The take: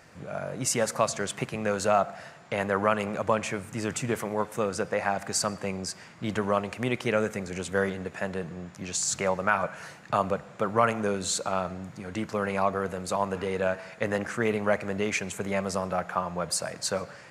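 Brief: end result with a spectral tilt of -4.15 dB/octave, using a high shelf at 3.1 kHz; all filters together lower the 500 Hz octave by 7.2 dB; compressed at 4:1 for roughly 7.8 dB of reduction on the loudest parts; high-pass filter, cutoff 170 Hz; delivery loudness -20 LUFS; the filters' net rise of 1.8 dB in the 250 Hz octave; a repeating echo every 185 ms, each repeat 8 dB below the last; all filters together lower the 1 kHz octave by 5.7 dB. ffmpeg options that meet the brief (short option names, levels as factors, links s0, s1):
-af "highpass=170,equalizer=f=250:t=o:g=6.5,equalizer=f=500:t=o:g=-9,equalizer=f=1000:t=o:g=-4.5,highshelf=f=3100:g=-4.5,acompressor=threshold=0.0224:ratio=4,aecho=1:1:185|370|555|740|925:0.398|0.159|0.0637|0.0255|0.0102,volume=6.68"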